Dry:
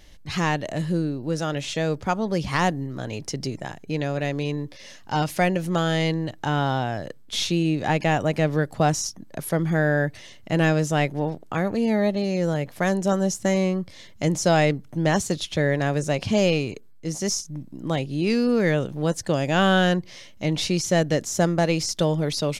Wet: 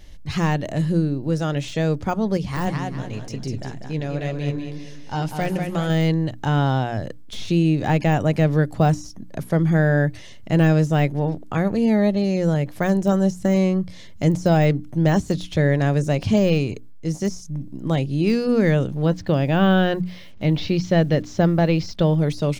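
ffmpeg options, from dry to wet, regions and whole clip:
-filter_complex "[0:a]asettb=1/sr,asplit=3[s0][s1][s2];[s0]atrim=end=2.374[s3];[s1]atrim=start=2.37:end=5.9,asetpts=PTS-STARTPTS,afade=t=in:d=0.004:c=qsin,afade=t=out:st=3.526:d=0.004:c=qsin,aecho=1:1:195|390|585|780:0.501|0.18|0.065|0.0234,atrim=end_sample=155673,flanger=delay=4:depth=6.9:regen=74:speed=2:shape=sinusoidal,aeval=exprs='0.168*(abs(mod(val(0)/0.168+3,4)-2)-1)':c=same[s4];[s2]atrim=start=5.896[s5];[s3][s4]acrossfade=d=0.004:c1=hsin:c2=qsin[s6];[s6][s5]acrossfade=d=0.004:c1=qsin:c2=hsin,asettb=1/sr,asplit=3[s7][s8][s9];[s7]atrim=end=19.054[s10];[s8]atrim=start=19.05:end=22.16,asetpts=PTS-STARTPTS,afade=t=in:d=0.004:c=qsin,afade=t=out:st=3.106:d=0.004:c=qsin,lowpass=f=4500:w=0.5412,lowpass=f=4500:w=1.3066,acrusher=bits=8:mix=0:aa=0.5[s11];[s9]atrim=start=22.156[s12];[s10][s11]acrossfade=d=0.004:c1=hsin:c2=qsin[s13];[s13][s12]acrossfade=d=0.004:c1=qsin:c2=hsin,bandreject=f=60:t=h:w=6,bandreject=f=120:t=h:w=6,bandreject=f=180:t=h:w=6,bandreject=f=240:t=h:w=6,bandreject=f=300:t=h:w=6,deesser=0.8,lowshelf=f=240:g=9"

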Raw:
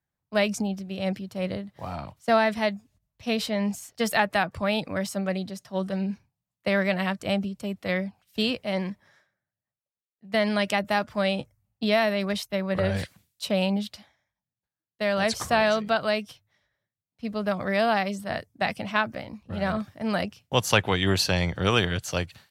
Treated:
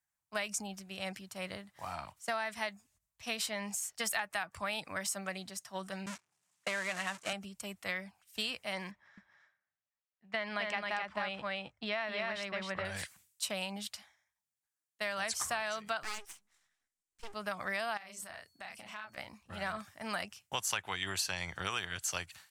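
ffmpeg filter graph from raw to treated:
-filter_complex "[0:a]asettb=1/sr,asplit=3[s0][s1][s2];[s0]atrim=end=6.064[s3];[s1]atrim=start=6.06:end=7.33,asetpts=PTS-STARTPTS,afade=t=in:d=0.004:c=qsin,afade=t=out:st=1.266:d=0.004:c=qsin,aeval=exprs='val(0)+0.5*0.0562*sgn(val(0))':c=same,agate=range=0.01:threshold=0.0398:ratio=16:release=100:detection=peak,highpass=170,lowpass=7800[s4];[s2]atrim=start=7.326[s5];[s3][s4]acrossfade=d=0.004:c1=hsin:c2=qsin[s6];[s6][s5]acrossfade=d=0.004:c1=qsin:c2=hsin,asettb=1/sr,asplit=3[s7][s8][s9];[s7]atrim=end=8.914[s10];[s8]atrim=start=8.91:end=12.85,asetpts=PTS-STARTPTS,afade=t=in:d=0.004:c=qsin,afade=t=out:st=3.936:d=0.004:c=qsin,lowpass=3300,aecho=1:1:264:0.708,atrim=end_sample=173754[s11];[s9]atrim=start=12.846[s12];[s10][s11]acrossfade=d=0.004:c1=hsin:c2=qsin[s13];[s13][s12]acrossfade=d=0.004:c1=qsin:c2=hsin,asettb=1/sr,asplit=3[s14][s15][s16];[s14]atrim=end=16.034[s17];[s15]atrim=start=16.03:end=17.34,asetpts=PTS-STARTPTS,afade=t=in:d=0.004:c=qsin,afade=t=out:st=1.306:d=0.004:c=qsin,lowpass=10000,bass=f=250:g=8,treble=f=4000:g=3,aeval=exprs='abs(val(0))':c=same[s18];[s16]atrim=start=17.336[s19];[s17][s18]acrossfade=d=0.004:c1=hsin:c2=qsin[s20];[s20][s19]acrossfade=d=0.004:c1=qsin:c2=hsin,asettb=1/sr,asplit=3[s21][s22][s23];[s21]atrim=end=17.974[s24];[s22]atrim=start=17.97:end=19.18,asetpts=PTS-STARTPTS,afade=t=in:d=0.004:c=qsin,afade=t=out:st=1.206:d=0.004:c=qsin,asplit=2[s25][s26];[s26]adelay=33,volume=0.708[s27];[s25][s27]amix=inputs=2:normalize=0,atrim=end_sample=53361,acompressor=threshold=0.0112:ratio=5:attack=3.2:release=140:knee=1:detection=peak,aeval=exprs='val(0)+0.000355*sin(2*PI*4400*n/s)':c=same[s28];[s23]atrim=start=19.176[s29];[s24][s28]acrossfade=d=0.004:c1=hsin:c2=qsin[s30];[s30][s29]acrossfade=d=0.004:c1=qsin:c2=hsin,equalizer=f=125:t=o:w=1:g=-5,equalizer=f=250:t=o:w=1:g=-7,equalizer=f=500:t=o:w=1:g=-10,equalizer=f=4000:t=o:w=1:g=-5,equalizer=f=8000:t=o:w=1:g=7,acompressor=threshold=0.0282:ratio=6,lowshelf=f=270:g=-11.5"

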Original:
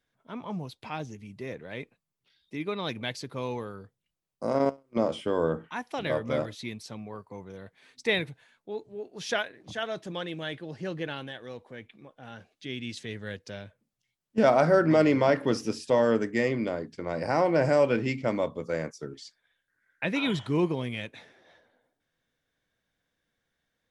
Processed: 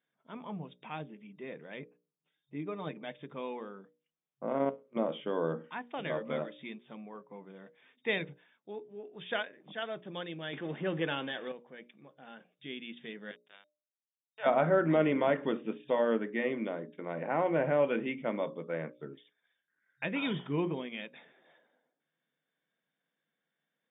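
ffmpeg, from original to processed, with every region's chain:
-filter_complex "[0:a]asettb=1/sr,asplit=3[s0][s1][s2];[s0]atrim=end=1.794[s3];[s1]atrim=start=1.79:end=3.11,asetpts=PTS-STARTPTS,afade=t=in:d=0.004:c=qsin,afade=t=out:st=1.316:d=0.004:c=qsin,lowpass=f=1100:p=1,aecho=1:1:6.6:0.45,atrim=end_sample=58212[s4];[s2]atrim=start=3.106[s5];[s3][s4]acrossfade=d=0.004:c1=hsin:c2=qsin[s6];[s6][s5]acrossfade=d=0.004:c1=qsin:c2=hsin,asettb=1/sr,asplit=3[s7][s8][s9];[s7]atrim=end=10.534[s10];[s8]atrim=start=10.53:end=11.52,asetpts=PTS-STARTPTS,afade=t=in:d=0.004:c=qsin,afade=t=out:st=0.986:d=0.004:c=qsin,aeval=exprs='val(0)+0.5*0.00596*sgn(val(0))':c=same,highpass=140,acontrast=53[s11];[s9]atrim=start=11.516[s12];[s10][s11]acrossfade=d=0.004:c1=hsin:c2=qsin[s13];[s13][s12]acrossfade=d=0.004:c1=qsin:c2=hsin,asettb=1/sr,asplit=3[s14][s15][s16];[s14]atrim=end=13.314[s17];[s15]atrim=start=13.31:end=14.46,asetpts=PTS-STARTPTS,afade=t=in:d=0.004:c=qsin,afade=t=out:st=1.146:d=0.004:c=qsin,highpass=f=750:w=0.5412,highpass=f=750:w=1.3066,aeval=exprs='sgn(val(0))*max(abs(val(0))-0.00501,0)':c=same[s18];[s16]atrim=start=14.456[s19];[s17][s18]acrossfade=d=0.004:c1=hsin:c2=qsin[s20];[s20][s19]acrossfade=d=0.004:c1=qsin:c2=hsin,bandreject=f=60:t=h:w=6,bandreject=f=120:t=h:w=6,bandreject=f=180:t=h:w=6,bandreject=f=240:t=h:w=6,bandreject=f=300:t=h:w=6,bandreject=f=360:t=h:w=6,bandreject=f=420:t=h:w=6,bandreject=f=480:t=h:w=6,bandreject=f=540:t=h:w=6,bandreject=f=600:t=h:w=6,afftfilt=real='re*between(b*sr/4096,130,3700)':imag='im*between(b*sr/4096,130,3700)':win_size=4096:overlap=0.75,volume=0.562"

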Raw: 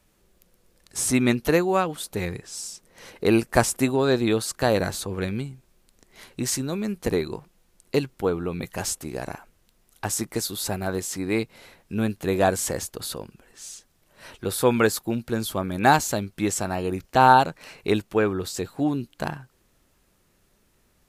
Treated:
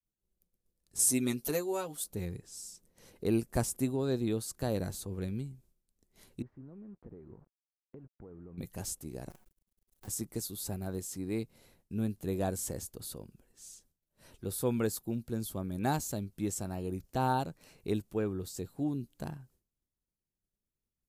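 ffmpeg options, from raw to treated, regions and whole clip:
-filter_complex "[0:a]asettb=1/sr,asplit=3[s0][s1][s2];[s0]atrim=end=0.994[s3];[s1]atrim=start=0.99:end=2.04,asetpts=PTS-STARTPTS,afade=t=in:d=0.004:c=qsin,afade=t=out:st=1.046:d=0.004:c=qsin,bass=f=250:g=-11,treble=f=4000:g=7,aecho=1:1:7.5:0.78,atrim=end_sample=46305[s4];[s2]atrim=start=2.036[s5];[s3][s4]acrossfade=d=0.004:c1=hsin:c2=qsin[s6];[s6][s5]acrossfade=d=0.004:c1=qsin:c2=hsin,asettb=1/sr,asplit=3[s7][s8][s9];[s7]atrim=end=6.424[s10];[s8]atrim=start=6.42:end=8.58,asetpts=PTS-STARTPTS,afade=t=in:d=0.004:c=qsin,afade=t=out:st=2.156:d=0.004:c=qsin,acompressor=threshold=0.0126:ratio=5:attack=3.2:release=140:knee=1:detection=peak,acrusher=bits=7:mix=0:aa=0.5,lowpass=f=1600:w=0.5412,lowpass=f=1600:w=1.3066[s11];[s9]atrim=start=8.576[s12];[s10][s11]acrossfade=d=0.004:c1=hsin:c2=qsin[s13];[s13][s12]acrossfade=d=0.004:c1=qsin:c2=hsin,asettb=1/sr,asplit=3[s14][s15][s16];[s14]atrim=end=9.304[s17];[s15]atrim=start=9.3:end=10.08,asetpts=PTS-STARTPTS,afade=t=in:d=0.004:c=qsin,afade=t=out:st=0.776:d=0.004:c=qsin,aecho=1:1:5.4:0.91,atrim=end_sample=34398,acompressor=threshold=0.00398:ratio=2:attack=3.2:release=140:knee=1:detection=peak,acrusher=bits=7:dc=4:mix=0:aa=0.000001[s18];[s16]atrim=start=10.076[s19];[s17][s18]acrossfade=d=0.004:c1=hsin:c2=qsin[s20];[s20][s19]acrossfade=d=0.004:c1=qsin:c2=hsin,agate=range=0.0224:threshold=0.00282:ratio=3:detection=peak,equalizer=f=1700:w=0.31:g=-14,volume=0.531"

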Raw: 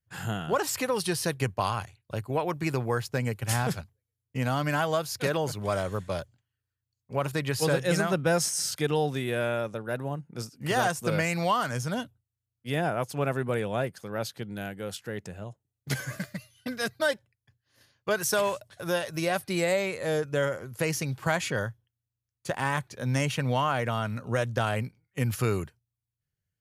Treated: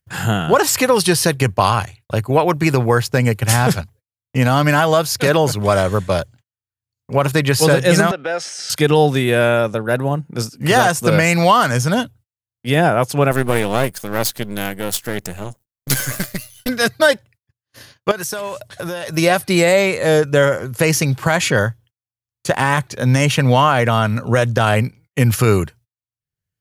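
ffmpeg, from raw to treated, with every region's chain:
-filter_complex "[0:a]asettb=1/sr,asplit=3[s0][s1][s2];[s0]atrim=end=8.114[s3];[s1]atrim=start=8.11:end=8.7,asetpts=PTS-STARTPTS,afade=t=in:d=0.004:c=qsin,afade=t=out:st=0.586:d=0.004:c=qsin,equalizer=f=1000:t=o:w=0.34:g=-10.5,acompressor=threshold=0.0398:ratio=6:attack=3.2:release=140:knee=1:detection=peak,highpass=510,lowpass=3600[s4];[s2]atrim=start=8.696[s5];[s3][s4]acrossfade=d=0.004:c1=hsin:c2=qsin[s6];[s6][s5]acrossfade=d=0.004:c1=qsin:c2=hsin,asettb=1/sr,asplit=3[s7][s8][s9];[s7]atrim=end=13.314[s10];[s8]atrim=start=13.31:end=16.69,asetpts=PTS-STARTPTS,afade=t=in:d=0.004:c=qsin,afade=t=out:st=3.376:d=0.004:c=qsin,aeval=exprs='if(lt(val(0),0),0.251*val(0),val(0))':c=same,aemphasis=mode=production:type=50kf[s11];[s9]atrim=start=16.686[s12];[s10][s11]acrossfade=d=0.004:c1=hsin:c2=qsin[s13];[s13][s12]acrossfade=d=0.004:c1=qsin:c2=hsin,asettb=1/sr,asplit=3[s14][s15][s16];[s14]atrim=end=18.114[s17];[s15]atrim=start=18.11:end=19.17,asetpts=PTS-STARTPTS,afade=t=in:d=0.004:c=qsin,afade=t=out:st=1.056:d=0.004:c=qsin,acompressor=threshold=0.0178:ratio=16:attack=3.2:release=140:knee=1:detection=peak,asoftclip=type=hard:threshold=0.0422[s18];[s16]atrim=start=19.166[s19];[s17][s18]acrossfade=d=0.004:c1=hsin:c2=qsin[s20];[s20][s19]acrossfade=d=0.004:c1=qsin:c2=hsin,acompressor=mode=upward:threshold=0.00501:ratio=2.5,agate=range=0.0224:threshold=0.00141:ratio=16:detection=peak,alimiter=level_in=5.62:limit=0.891:release=50:level=0:latency=1,volume=0.891"

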